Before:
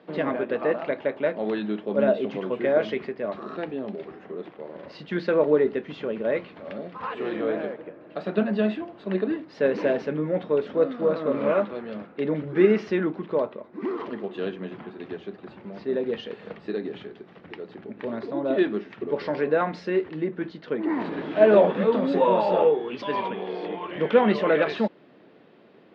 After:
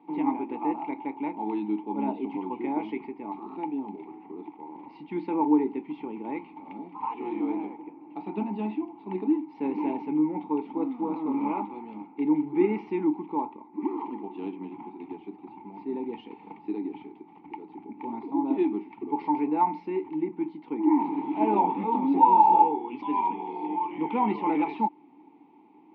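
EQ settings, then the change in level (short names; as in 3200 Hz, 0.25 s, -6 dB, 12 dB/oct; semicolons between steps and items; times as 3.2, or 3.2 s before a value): vowel filter u; low shelf 110 Hz +10 dB; bell 880 Hz +13 dB 0.47 oct; +5.5 dB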